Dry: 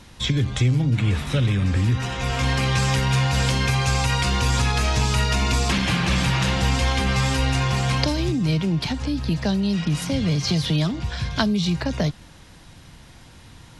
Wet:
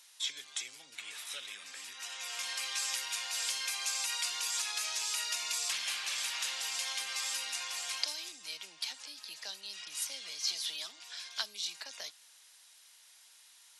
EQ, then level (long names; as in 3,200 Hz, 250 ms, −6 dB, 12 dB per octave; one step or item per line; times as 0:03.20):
high-pass filter 530 Hz 12 dB per octave
first difference
−2.5 dB